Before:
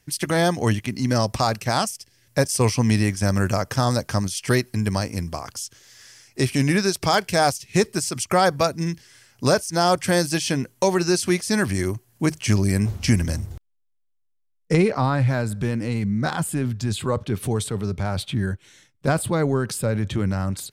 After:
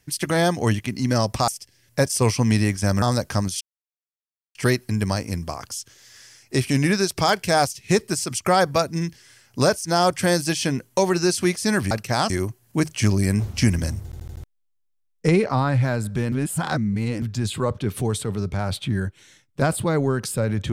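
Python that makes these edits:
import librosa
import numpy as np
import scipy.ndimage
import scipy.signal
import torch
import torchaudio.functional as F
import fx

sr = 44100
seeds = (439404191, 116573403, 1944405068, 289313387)

y = fx.edit(x, sr, fx.move(start_s=1.48, length_s=0.39, to_s=11.76),
    fx.cut(start_s=3.41, length_s=0.4),
    fx.insert_silence(at_s=4.4, length_s=0.94),
    fx.stutter_over(start_s=13.51, slice_s=0.08, count=5),
    fx.reverse_span(start_s=15.78, length_s=0.9), tone=tone)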